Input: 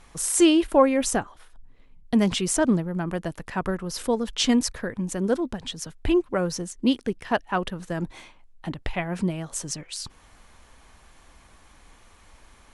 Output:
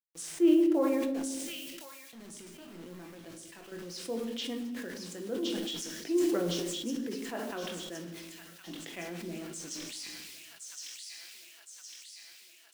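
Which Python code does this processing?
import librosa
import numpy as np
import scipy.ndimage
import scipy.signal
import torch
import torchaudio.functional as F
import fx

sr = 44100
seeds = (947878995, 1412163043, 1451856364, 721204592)

y = fx.env_lowpass_down(x, sr, base_hz=1300.0, full_db=-19.5)
y = scipy.signal.sosfilt(scipy.signal.butter(4, 270.0, 'highpass', fs=sr, output='sos'), y)
y = fx.peak_eq(y, sr, hz=950.0, db=-13.5, octaves=1.8)
y = fx.level_steps(y, sr, step_db=22, at=(1.06, 3.72))
y = fx.quant_dither(y, sr, seeds[0], bits=8, dither='none')
y = fx.chorus_voices(y, sr, voices=2, hz=0.92, base_ms=21, depth_ms=3.3, mix_pct=30)
y = fx.echo_wet_highpass(y, sr, ms=1064, feedback_pct=60, hz=2900.0, wet_db=-3.0)
y = fx.room_shoebox(y, sr, seeds[1], volume_m3=440.0, walls='mixed', distance_m=0.75)
y = fx.sustainer(y, sr, db_per_s=21.0)
y = F.gain(torch.from_numpy(y), -4.5).numpy()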